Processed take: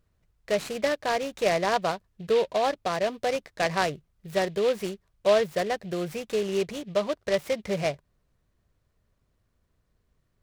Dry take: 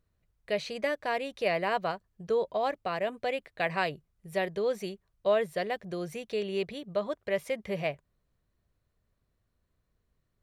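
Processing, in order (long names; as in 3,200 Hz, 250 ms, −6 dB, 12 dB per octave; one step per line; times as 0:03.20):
dynamic equaliser 3,000 Hz, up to −4 dB, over −42 dBFS, Q 0.8
short delay modulated by noise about 2,700 Hz, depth 0.042 ms
level +5 dB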